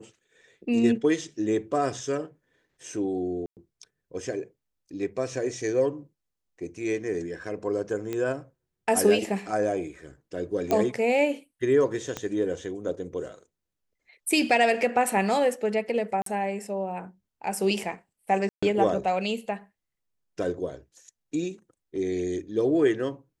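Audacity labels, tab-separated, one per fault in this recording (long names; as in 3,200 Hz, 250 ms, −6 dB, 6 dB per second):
3.460000	3.570000	drop-out 108 ms
8.130000	8.130000	click −18 dBFS
10.710000	10.710000	click −12 dBFS
12.170000	12.170000	click −16 dBFS
16.220000	16.260000	drop-out 43 ms
18.490000	18.620000	drop-out 135 ms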